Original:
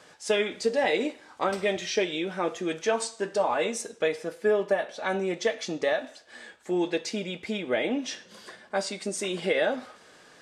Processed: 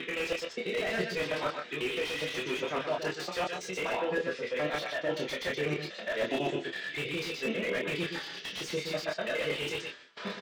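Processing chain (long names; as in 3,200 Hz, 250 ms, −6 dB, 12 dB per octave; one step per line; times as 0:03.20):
slices reordered back to front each 82 ms, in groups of 7
meter weighting curve D
noise gate with hold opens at −36 dBFS
mains-hum notches 50/100 Hz
reversed playback
downward compressor 5 to 1, threshold −31 dBFS, peak gain reduction 13.5 dB
reversed playback
phase-vocoder pitch shift with formants kept −4 semitones
high-frequency loss of the air 130 metres
double-tracking delay 27 ms −4 dB
multi-tap delay 121/133 ms −8/−15 dB
slew-rate limiting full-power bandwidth 39 Hz
level +2.5 dB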